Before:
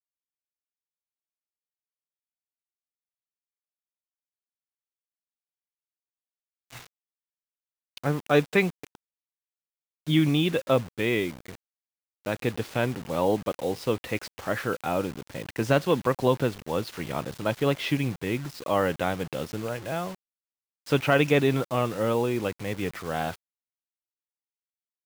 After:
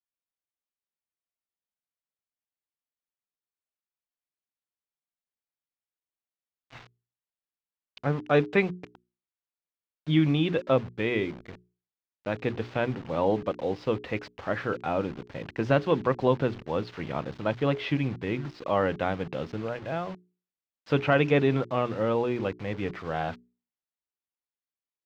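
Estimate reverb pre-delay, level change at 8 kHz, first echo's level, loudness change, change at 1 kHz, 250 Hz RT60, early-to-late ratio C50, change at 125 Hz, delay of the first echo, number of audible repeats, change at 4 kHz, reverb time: none, under -15 dB, none, -1.0 dB, -1.0 dB, none, none, -1.0 dB, none, none, -5.0 dB, none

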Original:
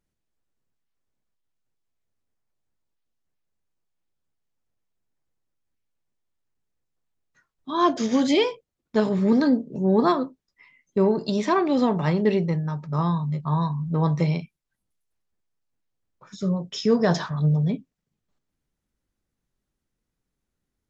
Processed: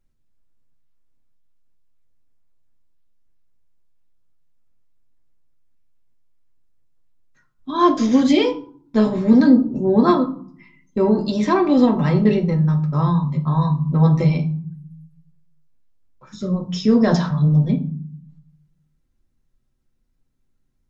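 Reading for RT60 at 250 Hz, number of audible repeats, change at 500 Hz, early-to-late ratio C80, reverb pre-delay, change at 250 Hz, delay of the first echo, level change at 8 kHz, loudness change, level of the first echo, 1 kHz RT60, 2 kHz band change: 0.90 s, none, +3.0 dB, 17.5 dB, 3 ms, +6.5 dB, none, n/a, +5.5 dB, none, 0.55 s, +2.0 dB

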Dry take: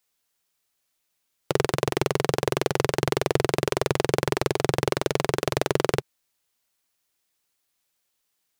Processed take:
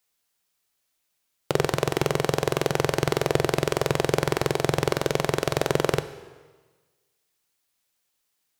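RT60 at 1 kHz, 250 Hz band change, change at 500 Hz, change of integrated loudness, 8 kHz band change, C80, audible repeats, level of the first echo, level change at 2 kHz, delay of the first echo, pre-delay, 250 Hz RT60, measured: 1.4 s, +0.5 dB, +0.5 dB, +0.5 dB, 0.0 dB, 15.0 dB, none, none, +0.5 dB, none, 10 ms, 1.4 s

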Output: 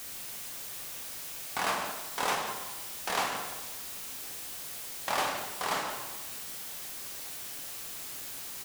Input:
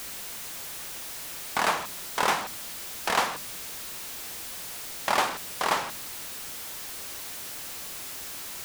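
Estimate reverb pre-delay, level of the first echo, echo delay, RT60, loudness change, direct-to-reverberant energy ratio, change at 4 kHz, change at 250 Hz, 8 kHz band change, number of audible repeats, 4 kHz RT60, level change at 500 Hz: 3 ms, -13.0 dB, 0.172 s, 1.2 s, -4.0 dB, 1.0 dB, -4.0 dB, -4.5 dB, -3.0 dB, 1, 0.95 s, -4.5 dB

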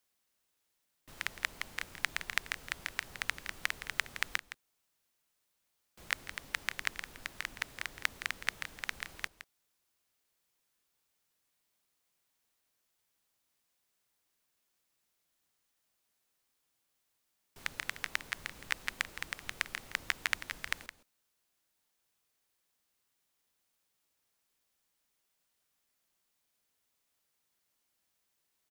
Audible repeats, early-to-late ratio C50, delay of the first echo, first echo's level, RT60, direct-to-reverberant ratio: 1, none, 0.166 s, -12.5 dB, none, none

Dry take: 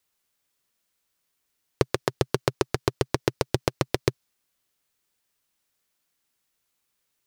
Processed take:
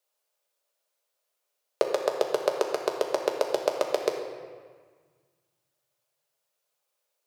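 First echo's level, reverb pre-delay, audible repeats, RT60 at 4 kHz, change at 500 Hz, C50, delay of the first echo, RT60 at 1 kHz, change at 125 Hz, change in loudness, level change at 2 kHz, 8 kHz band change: none, 3 ms, none, 1.2 s, +2.5 dB, 4.5 dB, none, 1.6 s, under -25 dB, -0.5 dB, -4.5 dB, -4.0 dB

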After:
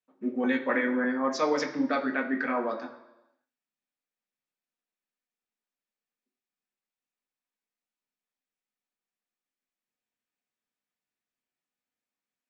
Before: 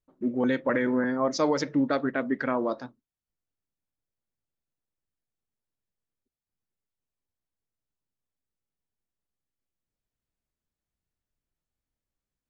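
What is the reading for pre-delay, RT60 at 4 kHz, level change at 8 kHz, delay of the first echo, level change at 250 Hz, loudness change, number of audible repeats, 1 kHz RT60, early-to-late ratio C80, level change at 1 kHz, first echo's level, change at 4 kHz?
3 ms, 0.95 s, n/a, none, -2.0 dB, -1.5 dB, none, 1.0 s, 13.0 dB, 0.0 dB, none, -1.5 dB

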